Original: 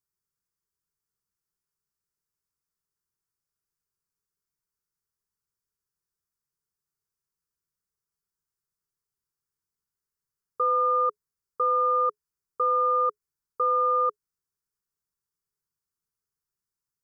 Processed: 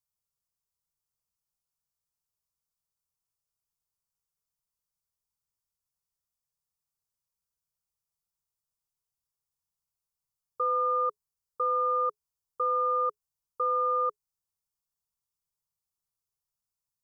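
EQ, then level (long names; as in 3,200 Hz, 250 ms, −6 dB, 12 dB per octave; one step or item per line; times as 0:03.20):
phaser with its sweep stopped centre 770 Hz, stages 4
0.0 dB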